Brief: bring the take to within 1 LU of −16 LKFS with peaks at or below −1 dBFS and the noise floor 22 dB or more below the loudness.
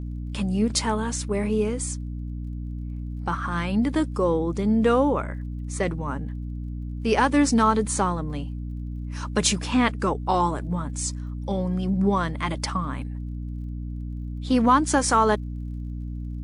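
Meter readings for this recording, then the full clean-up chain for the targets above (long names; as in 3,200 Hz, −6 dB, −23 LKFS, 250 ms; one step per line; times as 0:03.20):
crackle rate 31 per second; mains hum 60 Hz; hum harmonics up to 300 Hz; level of the hum −29 dBFS; integrated loudness −25.0 LKFS; sample peak −7.5 dBFS; target loudness −16.0 LKFS
→ click removal
hum removal 60 Hz, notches 5
level +9 dB
brickwall limiter −1 dBFS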